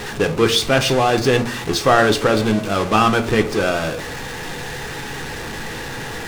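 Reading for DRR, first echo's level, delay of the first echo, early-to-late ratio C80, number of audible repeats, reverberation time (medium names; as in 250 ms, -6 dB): 5.5 dB, no echo, no echo, 18.5 dB, no echo, 0.40 s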